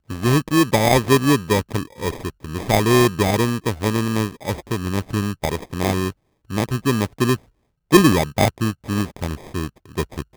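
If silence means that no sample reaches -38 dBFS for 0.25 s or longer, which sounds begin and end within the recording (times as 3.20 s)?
6.50–7.36 s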